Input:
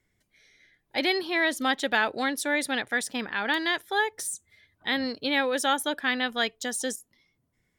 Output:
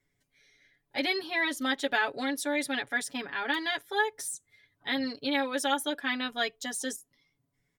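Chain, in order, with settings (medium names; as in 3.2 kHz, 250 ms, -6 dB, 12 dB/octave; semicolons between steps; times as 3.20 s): comb 7.1 ms, depth 99%; trim -6.5 dB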